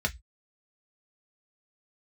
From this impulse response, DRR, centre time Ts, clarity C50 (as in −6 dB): 2.0 dB, 5 ms, 23.0 dB